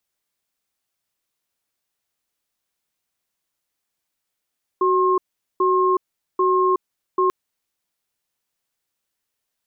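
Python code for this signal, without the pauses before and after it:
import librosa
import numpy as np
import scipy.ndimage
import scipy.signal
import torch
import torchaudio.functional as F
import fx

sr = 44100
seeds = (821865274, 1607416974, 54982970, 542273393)

y = fx.cadence(sr, length_s=2.49, low_hz=372.0, high_hz=1070.0, on_s=0.37, off_s=0.42, level_db=-17.5)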